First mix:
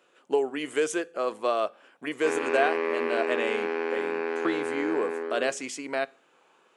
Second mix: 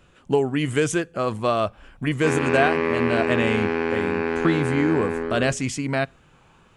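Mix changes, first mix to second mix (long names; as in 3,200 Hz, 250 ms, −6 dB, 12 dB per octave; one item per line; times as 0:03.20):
speech: send −7.5 dB
master: remove four-pole ladder high-pass 300 Hz, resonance 25%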